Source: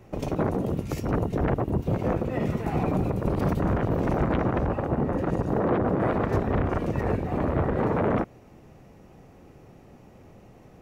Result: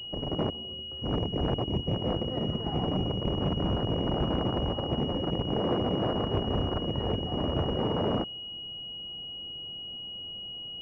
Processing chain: 0.5–1.02 resonator 76 Hz, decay 0.82 s, harmonics odd, mix 90%; pulse-width modulation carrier 2900 Hz; gain -4 dB

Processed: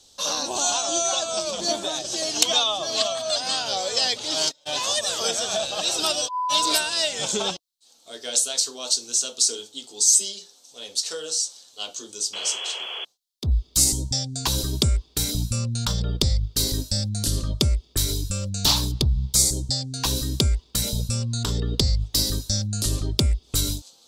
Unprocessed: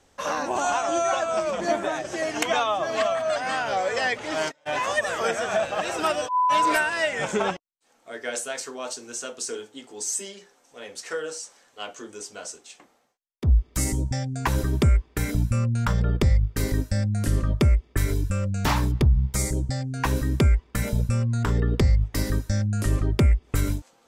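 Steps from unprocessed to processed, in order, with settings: painted sound noise, 12.33–13.05, 360–3400 Hz -34 dBFS; resonant high shelf 2800 Hz +12.5 dB, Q 3; gain -3 dB

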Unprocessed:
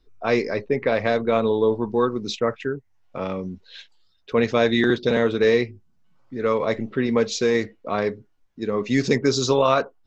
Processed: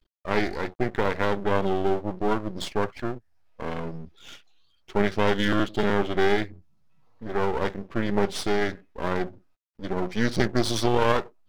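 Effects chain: wide varispeed 0.876×; half-wave rectifier

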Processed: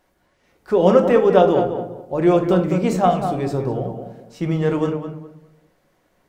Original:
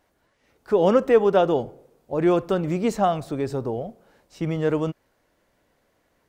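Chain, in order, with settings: tape echo 0.203 s, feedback 28%, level -6 dB, low-pass 1700 Hz; on a send at -5.5 dB: reverb RT60 0.50 s, pre-delay 5 ms; on the sum: gain +2 dB

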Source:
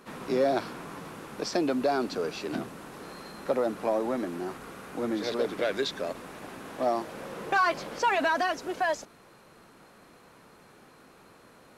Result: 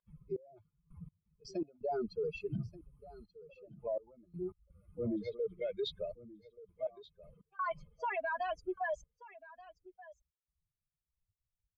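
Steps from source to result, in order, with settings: per-bin expansion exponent 3; LPF 1500 Hz 12 dB/oct; comb 1.9 ms, depth 87%; reverse; compressor 16:1, threshold -39 dBFS, peak gain reduction 20 dB; reverse; limiter -43 dBFS, peak gain reduction 11.5 dB; step gate "xx...x..x.xxxxxx" 83 bpm -24 dB; on a send: echo 1.181 s -18.5 dB; on the sum: gain +13.5 dB

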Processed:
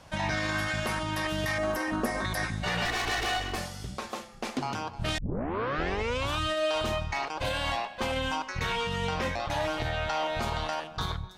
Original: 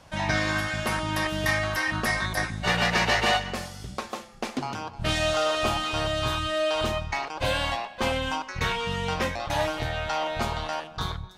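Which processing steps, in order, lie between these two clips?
2.85–3.58 minimum comb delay 2.7 ms; 9.07–10.17 high shelf 8500 Hz -6 dB; limiter -20.5 dBFS, peak gain reduction 9 dB; 1.58–2.25 graphic EQ 125/250/500/2000/4000 Hz -11/+9/+6/-5/-8 dB; 5.18 tape start 1.20 s

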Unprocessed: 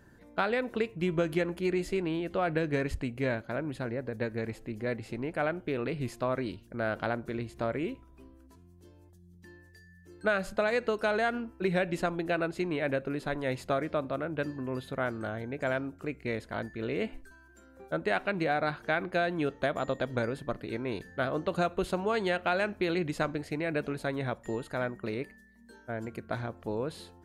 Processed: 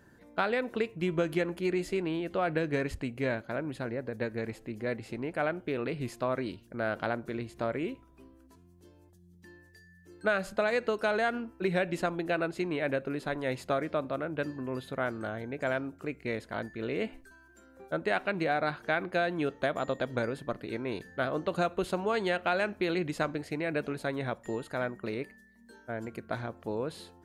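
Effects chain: low shelf 73 Hz -9 dB

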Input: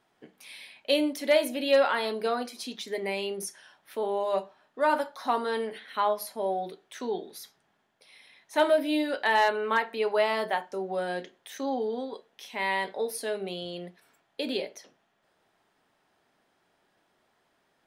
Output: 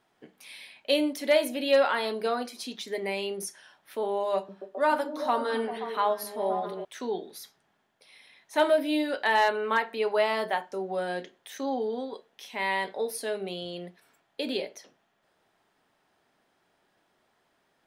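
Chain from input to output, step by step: 4.35–6.85 delay with a stepping band-pass 0.132 s, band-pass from 210 Hz, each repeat 0.7 oct, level -2 dB

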